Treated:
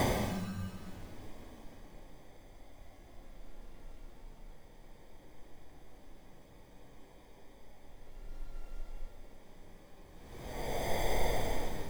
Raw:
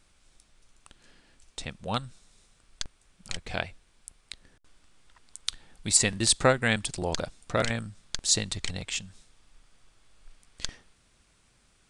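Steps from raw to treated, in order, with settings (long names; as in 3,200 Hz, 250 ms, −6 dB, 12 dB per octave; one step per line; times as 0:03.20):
decimation without filtering 32×
extreme stretch with random phases 6.8×, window 0.25 s, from 0:09.01
mains-hum notches 50/100 Hz
level +8 dB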